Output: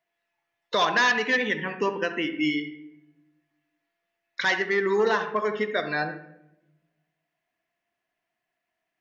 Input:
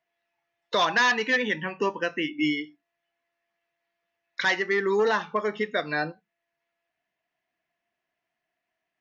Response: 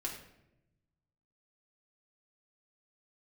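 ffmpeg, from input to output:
-filter_complex "[0:a]asplit=2[link_01][link_02];[1:a]atrim=start_sample=2205,lowpass=2500,adelay=68[link_03];[link_02][link_03]afir=irnorm=-1:irlink=0,volume=-8.5dB[link_04];[link_01][link_04]amix=inputs=2:normalize=0"

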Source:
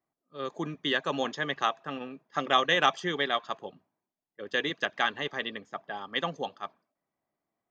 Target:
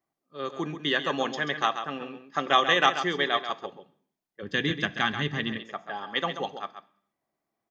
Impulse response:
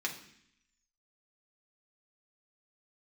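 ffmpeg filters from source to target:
-filter_complex "[0:a]aecho=1:1:135:0.335,asplit=2[link_01][link_02];[1:a]atrim=start_sample=2205,afade=type=out:start_time=0.39:duration=0.01,atrim=end_sample=17640[link_03];[link_02][link_03]afir=irnorm=-1:irlink=0,volume=-11.5dB[link_04];[link_01][link_04]amix=inputs=2:normalize=0,asplit=3[link_05][link_06][link_07];[link_05]afade=type=out:start_time=4.42:duration=0.02[link_08];[link_06]asubboost=boost=10.5:cutoff=170,afade=type=in:start_time=4.42:duration=0.02,afade=type=out:start_time=5.57:duration=0.02[link_09];[link_07]afade=type=in:start_time=5.57:duration=0.02[link_10];[link_08][link_09][link_10]amix=inputs=3:normalize=0"

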